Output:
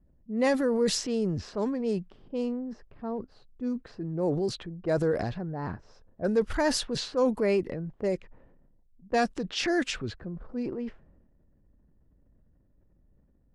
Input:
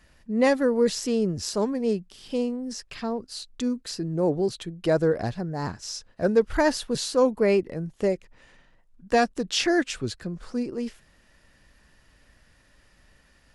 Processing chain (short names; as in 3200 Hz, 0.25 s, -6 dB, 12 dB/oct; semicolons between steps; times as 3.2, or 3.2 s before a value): low-pass opened by the level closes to 320 Hz, open at -19.5 dBFS; transient shaper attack -2 dB, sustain +7 dB; gain -4 dB